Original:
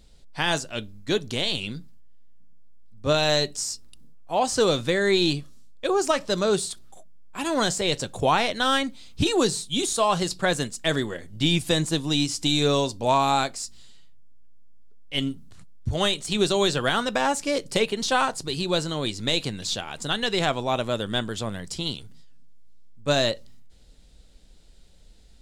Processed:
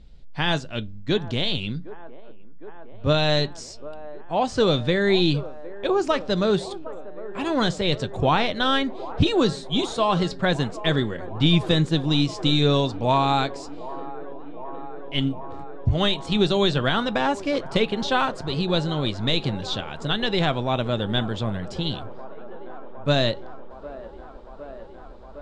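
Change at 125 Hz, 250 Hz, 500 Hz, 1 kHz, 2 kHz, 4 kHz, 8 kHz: +6.0, +3.5, +1.0, +0.5, 0.0, 0.0, -12.5 dB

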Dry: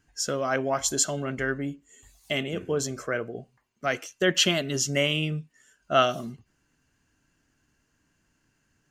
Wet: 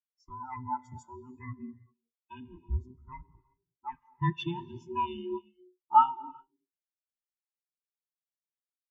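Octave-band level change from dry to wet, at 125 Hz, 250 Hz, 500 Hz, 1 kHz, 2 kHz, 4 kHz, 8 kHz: -5.0 dB, -9.5 dB, -17.5 dB, +3.0 dB, -19.5 dB, -21.5 dB, under -35 dB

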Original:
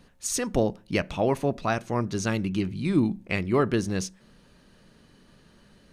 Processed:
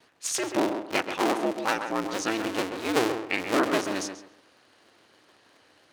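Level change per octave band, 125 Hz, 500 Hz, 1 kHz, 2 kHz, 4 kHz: -15.5, -1.0, +3.5, +3.5, +5.0 dB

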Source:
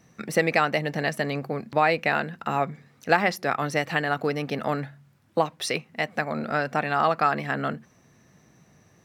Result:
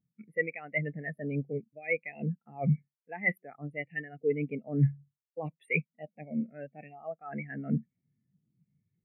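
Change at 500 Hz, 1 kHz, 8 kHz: -10.0 dB, -22.0 dB, under -35 dB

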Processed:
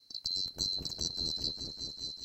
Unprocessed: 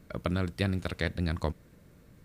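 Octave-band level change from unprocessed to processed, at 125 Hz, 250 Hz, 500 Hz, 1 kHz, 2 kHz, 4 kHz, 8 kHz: -17.0 dB, -15.0 dB, -16.5 dB, -19.0 dB, under -25 dB, +12.0 dB, +14.0 dB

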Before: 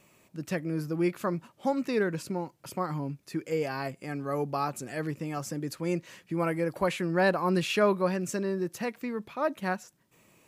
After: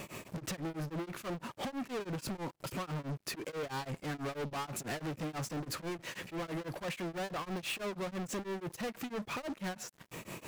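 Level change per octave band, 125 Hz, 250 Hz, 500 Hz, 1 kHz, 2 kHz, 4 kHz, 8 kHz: -6.5, -9.0, -11.0, -8.5, -7.5, -2.5, -1.5 dB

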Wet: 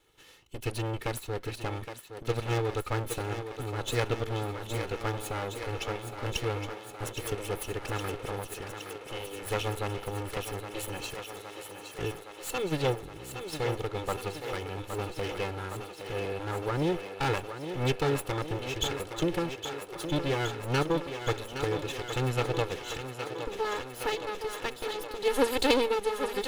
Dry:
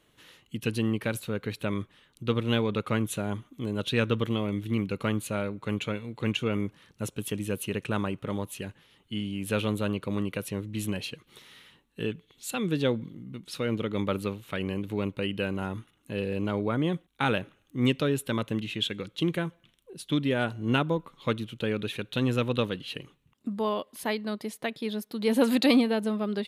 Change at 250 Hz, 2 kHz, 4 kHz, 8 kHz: -8.0, -1.5, -1.5, +2.0 dB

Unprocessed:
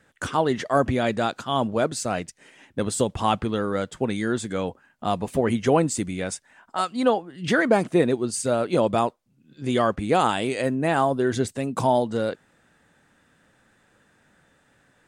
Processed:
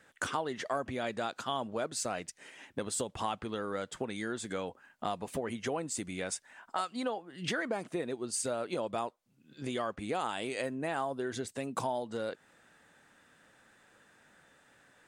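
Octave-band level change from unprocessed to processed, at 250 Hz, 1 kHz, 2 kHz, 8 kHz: -14.0, -11.5, -10.0, -6.0 dB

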